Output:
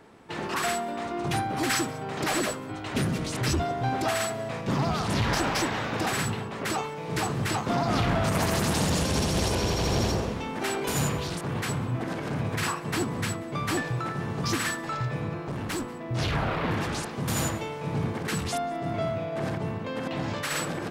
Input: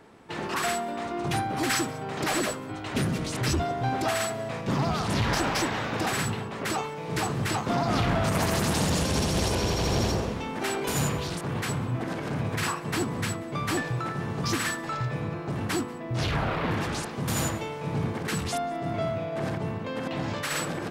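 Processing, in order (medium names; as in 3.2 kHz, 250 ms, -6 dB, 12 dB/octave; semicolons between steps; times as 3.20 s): 15.45–16.09 s: one-sided clip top -34 dBFS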